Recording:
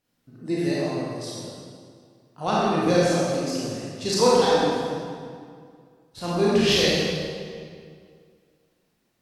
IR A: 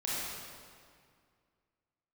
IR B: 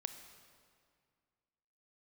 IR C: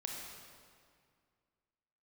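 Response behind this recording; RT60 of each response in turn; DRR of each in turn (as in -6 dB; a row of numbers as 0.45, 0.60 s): A; 2.1, 2.1, 2.1 s; -8.0, 8.0, -1.0 dB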